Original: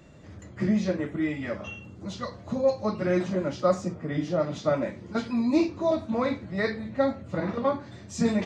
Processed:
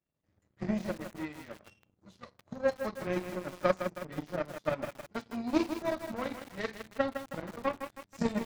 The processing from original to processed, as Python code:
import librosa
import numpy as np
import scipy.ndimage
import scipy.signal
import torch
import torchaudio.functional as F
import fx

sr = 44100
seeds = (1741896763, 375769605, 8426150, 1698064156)

y = fx.power_curve(x, sr, exponent=2.0)
y = fx.echo_crushed(y, sr, ms=159, feedback_pct=55, bits=7, wet_db=-8.0)